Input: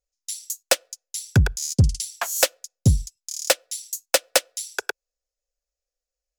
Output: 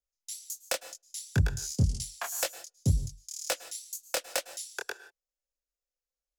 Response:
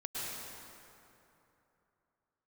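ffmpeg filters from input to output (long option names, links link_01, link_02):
-filter_complex "[0:a]acrossover=split=160[link_01][link_02];[link_02]acompressor=threshold=-20dB:ratio=2[link_03];[link_01][link_03]amix=inputs=2:normalize=0,flanger=delay=19.5:depth=7.3:speed=2,asplit=2[link_04][link_05];[1:a]atrim=start_sample=2205,afade=type=out:start_time=0.23:duration=0.01,atrim=end_sample=10584[link_06];[link_05][link_06]afir=irnorm=-1:irlink=0,volume=-11dB[link_07];[link_04][link_07]amix=inputs=2:normalize=0,volume=-6.5dB"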